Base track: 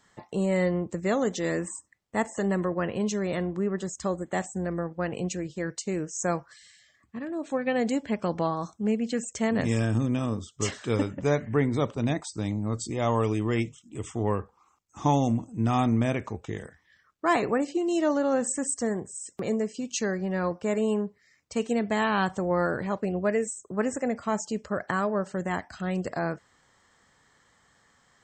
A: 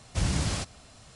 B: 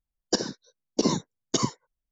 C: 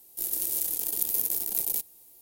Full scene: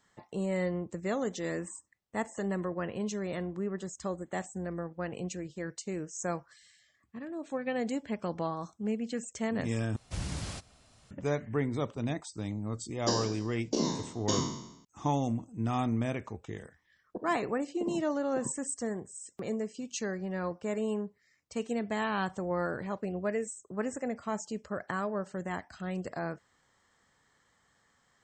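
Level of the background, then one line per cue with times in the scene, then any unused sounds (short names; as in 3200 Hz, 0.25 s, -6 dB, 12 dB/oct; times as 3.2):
base track -6.5 dB
9.96 replace with A -9 dB
12.74 add B -9.5 dB + spectral trails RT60 0.83 s
16.82 add B -13.5 dB + inverse Chebyshev low-pass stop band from 2300 Hz, stop band 50 dB
not used: C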